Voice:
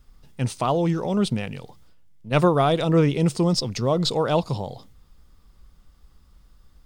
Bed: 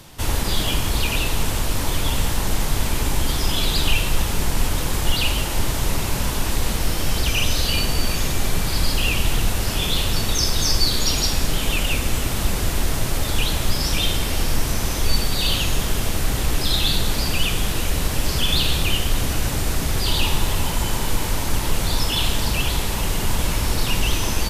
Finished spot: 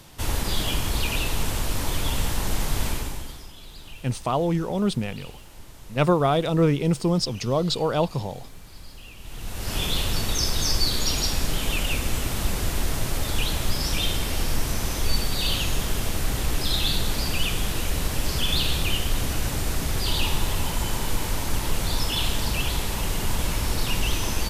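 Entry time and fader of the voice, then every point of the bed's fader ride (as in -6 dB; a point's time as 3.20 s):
3.65 s, -1.5 dB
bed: 2.89 s -4 dB
3.53 s -23.5 dB
9.17 s -23.5 dB
9.76 s -4 dB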